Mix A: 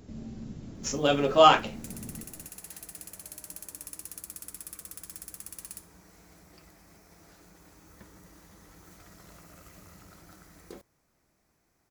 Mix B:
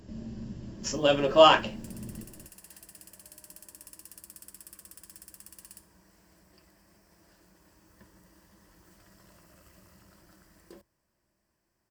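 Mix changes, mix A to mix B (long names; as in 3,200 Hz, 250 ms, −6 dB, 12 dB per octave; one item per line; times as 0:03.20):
background −6.0 dB
master: add EQ curve with evenly spaced ripples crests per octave 1.3, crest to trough 7 dB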